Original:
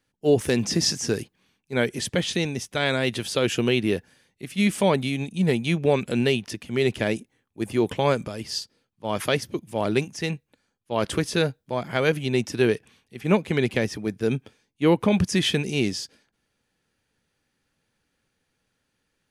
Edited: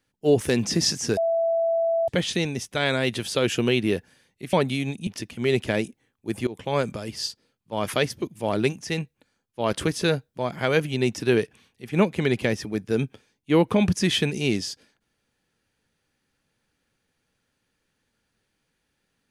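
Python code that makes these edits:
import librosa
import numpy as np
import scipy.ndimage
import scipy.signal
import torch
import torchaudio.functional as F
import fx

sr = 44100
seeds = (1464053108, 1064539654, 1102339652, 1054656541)

y = fx.edit(x, sr, fx.bleep(start_s=1.17, length_s=0.91, hz=664.0, db=-19.5),
    fx.cut(start_s=4.53, length_s=0.33),
    fx.cut(start_s=5.4, length_s=0.99),
    fx.fade_in_from(start_s=7.79, length_s=0.42, floor_db=-19.0), tone=tone)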